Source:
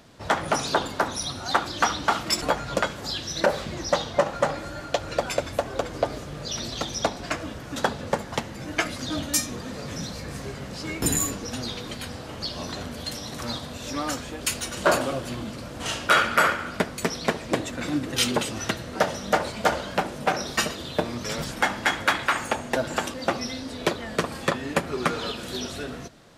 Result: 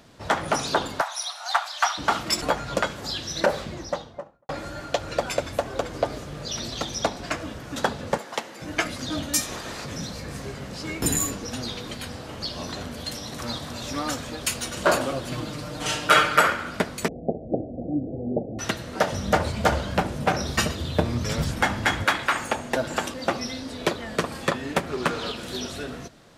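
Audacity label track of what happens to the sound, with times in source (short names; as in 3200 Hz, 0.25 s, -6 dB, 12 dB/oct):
1.010000	1.980000	steep high-pass 630 Hz 72 dB/oct
3.450000	4.490000	studio fade out
8.180000	8.620000	HPF 370 Hz
9.400000	9.840000	spectral limiter ceiling under each frame's peak by 16 dB
13.280000	13.680000	echo throw 0.28 s, feedback 85%, level -7 dB
15.310000	16.410000	comb 6.6 ms, depth 92%
17.080000	18.590000	steep low-pass 760 Hz 96 dB/oct
19.120000	22.050000	bell 80 Hz +14.5 dB 1.9 oct
24.710000	25.510000	Doppler distortion depth 0.44 ms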